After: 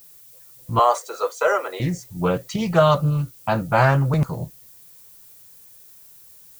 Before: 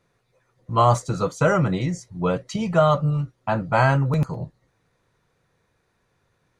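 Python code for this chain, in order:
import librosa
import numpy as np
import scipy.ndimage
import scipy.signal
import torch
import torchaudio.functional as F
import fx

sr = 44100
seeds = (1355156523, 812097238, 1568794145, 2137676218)

y = fx.ellip_highpass(x, sr, hz=420.0, order=4, stop_db=80, at=(0.79, 1.8))
y = fx.peak_eq(y, sr, hz=4400.0, db=7.5, octaves=0.94, at=(2.58, 3.62))
y = fx.dmg_noise_colour(y, sr, seeds[0], colour='violet', level_db=-49.0)
y = fx.doppler_dist(y, sr, depth_ms=0.2)
y = y * librosa.db_to_amplitude(1.5)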